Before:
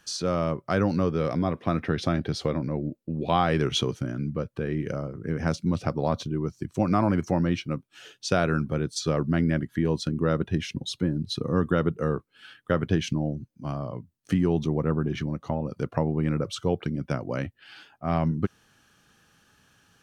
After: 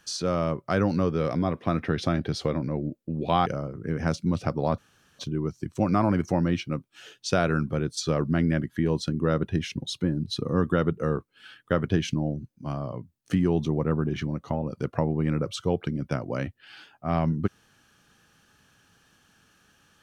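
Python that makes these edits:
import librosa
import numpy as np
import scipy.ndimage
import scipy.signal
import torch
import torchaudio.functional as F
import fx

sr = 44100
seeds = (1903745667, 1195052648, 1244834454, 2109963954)

y = fx.edit(x, sr, fx.cut(start_s=3.46, length_s=1.4),
    fx.insert_room_tone(at_s=6.18, length_s=0.41), tone=tone)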